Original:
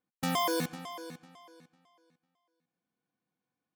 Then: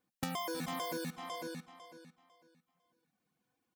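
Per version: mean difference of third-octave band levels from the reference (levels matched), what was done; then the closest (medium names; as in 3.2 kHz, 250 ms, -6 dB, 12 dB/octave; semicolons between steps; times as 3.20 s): 11.5 dB: multi-tap echo 74/167/314/334/446 ms -14/-17.5/-10/-17/-4 dB; reverb removal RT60 0.72 s; compression 16:1, threshold -40 dBFS, peak gain reduction 14.5 dB; trim +5.5 dB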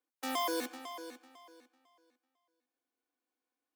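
4.0 dB: steep high-pass 250 Hz 72 dB/octave; in parallel at 0 dB: peak limiter -25 dBFS, peak gain reduction 8.5 dB; on the sum: short-mantissa float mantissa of 2-bit; trim -8 dB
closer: second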